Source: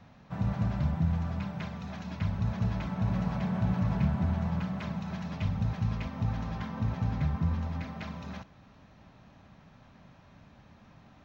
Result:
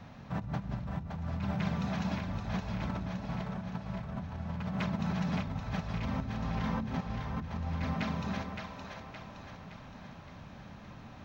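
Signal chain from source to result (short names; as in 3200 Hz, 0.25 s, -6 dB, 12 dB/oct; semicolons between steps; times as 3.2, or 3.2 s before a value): negative-ratio compressor -37 dBFS, ratio -1; on a send: split-band echo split 380 Hz, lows 0.167 s, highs 0.567 s, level -5 dB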